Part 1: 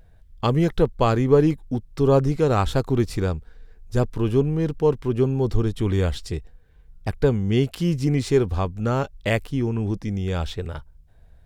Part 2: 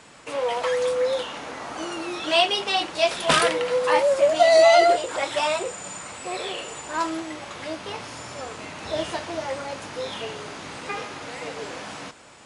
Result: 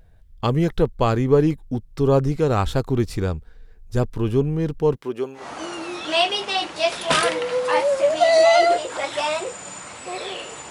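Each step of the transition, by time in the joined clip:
part 1
4.95–5.47 s: high-pass 230 Hz -> 830 Hz
5.40 s: go over to part 2 from 1.59 s, crossfade 0.14 s

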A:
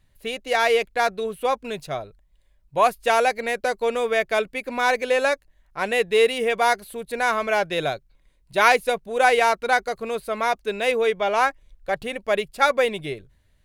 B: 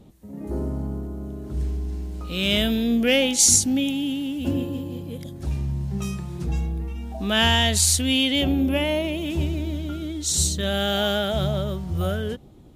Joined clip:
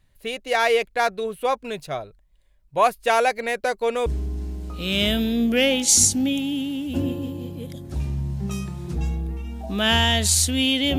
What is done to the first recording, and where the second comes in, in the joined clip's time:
A
4.06 s: go over to B from 1.57 s

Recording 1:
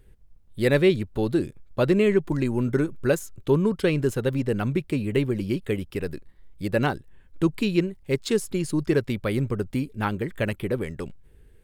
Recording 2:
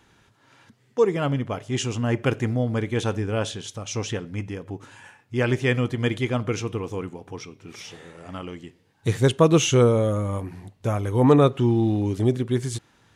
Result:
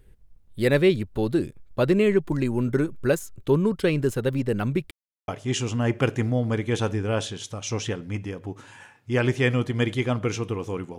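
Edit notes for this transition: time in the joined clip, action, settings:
recording 1
4.91–5.28 s: mute
5.28 s: go over to recording 2 from 1.52 s

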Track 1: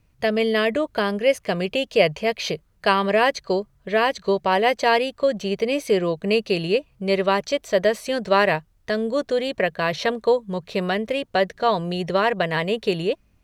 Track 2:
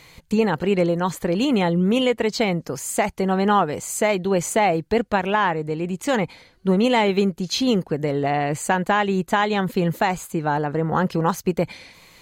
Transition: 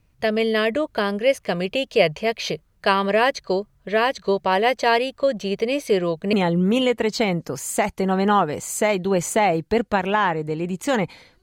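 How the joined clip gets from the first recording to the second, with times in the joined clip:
track 1
6.33 s: go over to track 2 from 1.53 s

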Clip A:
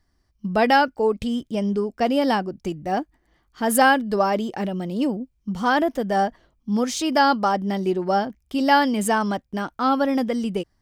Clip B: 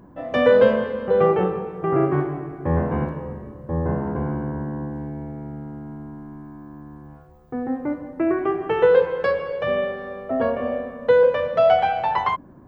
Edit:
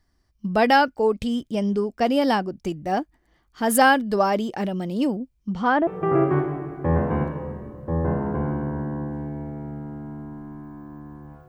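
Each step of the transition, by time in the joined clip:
clip A
5.47–5.87 s: low-pass 6.6 kHz -> 1.1 kHz
5.87 s: go over to clip B from 1.68 s

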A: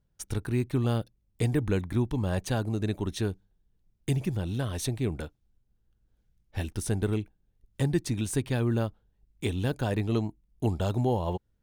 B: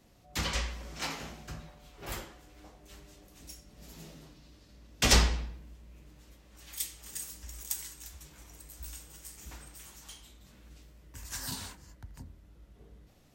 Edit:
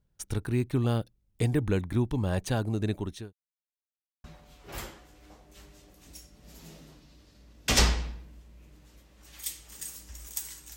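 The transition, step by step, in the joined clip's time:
A
2.93–3.33 s: fade out linear
3.33–4.24 s: mute
4.24 s: go over to B from 1.58 s

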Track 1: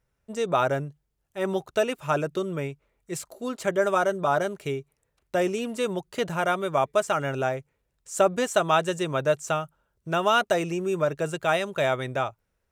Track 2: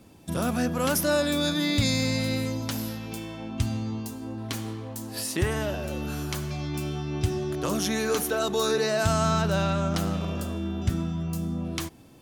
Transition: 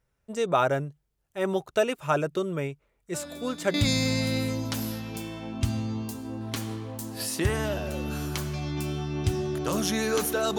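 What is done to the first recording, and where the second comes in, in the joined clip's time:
track 1
3.14 s: add track 2 from 1.11 s 0.60 s -15.5 dB
3.74 s: go over to track 2 from 1.71 s

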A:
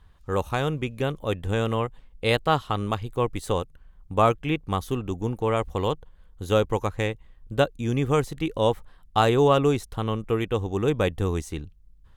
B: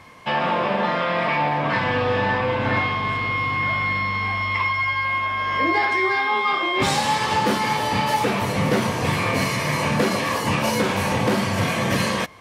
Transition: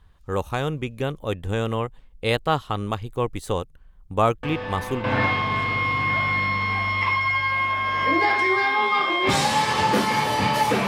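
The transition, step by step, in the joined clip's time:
A
4.43 s: add B from 1.96 s 0.61 s -10.5 dB
5.04 s: go over to B from 2.57 s

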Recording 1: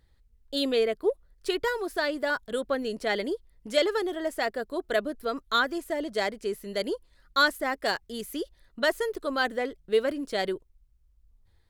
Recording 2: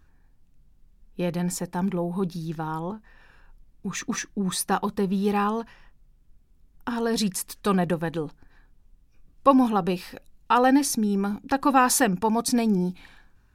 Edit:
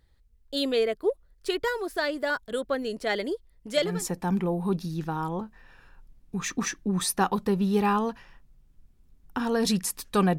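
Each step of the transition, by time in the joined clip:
recording 1
3.91 s: go over to recording 2 from 1.42 s, crossfade 0.34 s linear

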